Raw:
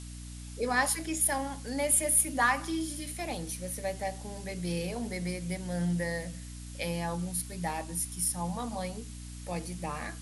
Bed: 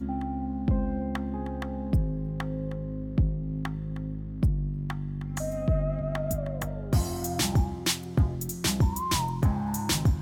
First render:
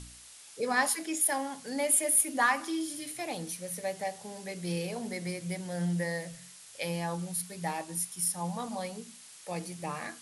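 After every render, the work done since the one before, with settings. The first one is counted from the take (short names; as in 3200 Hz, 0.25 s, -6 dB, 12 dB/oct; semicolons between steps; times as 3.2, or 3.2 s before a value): de-hum 60 Hz, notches 5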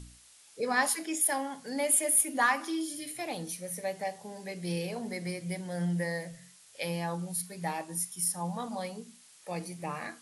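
noise print and reduce 6 dB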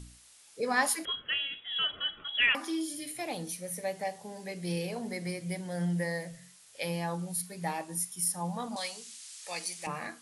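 1.05–2.55 inverted band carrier 3600 Hz; 8.76–9.87 weighting filter ITU-R 468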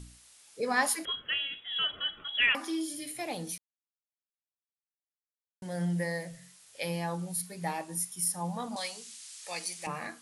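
3.58–5.62 mute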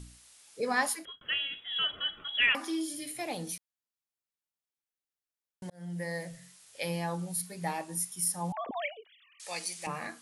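0.59–1.21 fade out equal-power; 5.7–6.24 fade in; 8.52–9.4 sine-wave speech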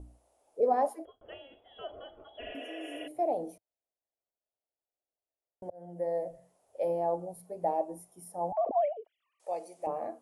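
2.44–3.05 spectral repair 310–5300 Hz before; EQ curve 100 Hz 0 dB, 150 Hz -14 dB, 320 Hz +3 dB, 460 Hz +6 dB, 660 Hz +12 dB, 1100 Hz -8 dB, 1700 Hz -20 dB, 2700 Hz -22 dB, 4100 Hz -27 dB, 13000 Hz -18 dB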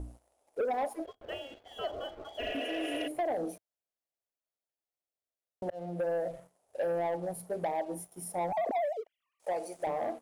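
compressor 5:1, threshold -34 dBFS, peak gain reduction 12 dB; sample leveller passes 2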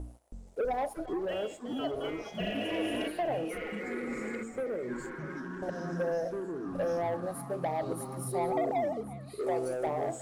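delay with a stepping band-pass 0.362 s, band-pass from 1200 Hz, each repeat 1.4 oct, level -9 dB; echoes that change speed 0.323 s, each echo -5 st, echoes 3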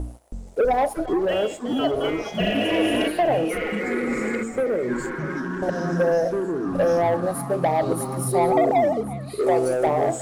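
gain +11.5 dB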